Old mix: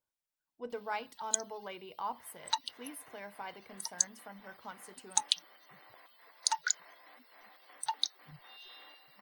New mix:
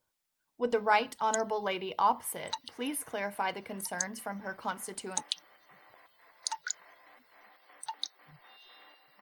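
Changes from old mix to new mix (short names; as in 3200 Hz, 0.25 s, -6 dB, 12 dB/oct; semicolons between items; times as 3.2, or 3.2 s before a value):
speech +11.5 dB; first sound -4.5 dB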